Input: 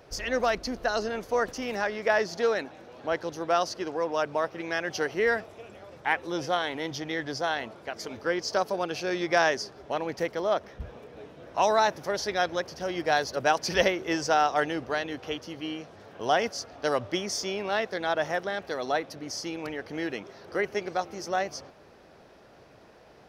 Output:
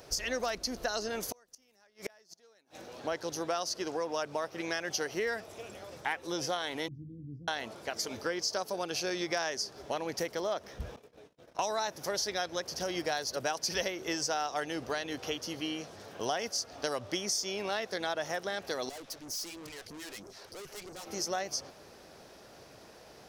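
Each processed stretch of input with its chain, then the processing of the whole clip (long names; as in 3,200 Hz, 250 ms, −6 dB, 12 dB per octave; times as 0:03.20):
0:01.20–0:02.77: high-shelf EQ 5,300 Hz +9 dB + gate with flip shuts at −24 dBFS, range −38 dB
0:06.88–0:07.48: inverse Chebyshev low-pass filter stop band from 750 Hz, stop band 60 dB + double-tracking delay 41 ms −10.5 dB
0:10.96–0:11.59: noise gate −46 dBFS, range −39 dB + downward compressor 4 to 1, threshold −52 dBFS
0:18.89–0:21.07: all-pass phaser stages 2, 3.1 Hz, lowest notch 110–3,300 Hz + tube saturation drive 44 dB, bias 0.6
whole clip: bass and treble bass −1 dB, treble +12 dB; downward compressor 4 to 1, threshold −31 dBFS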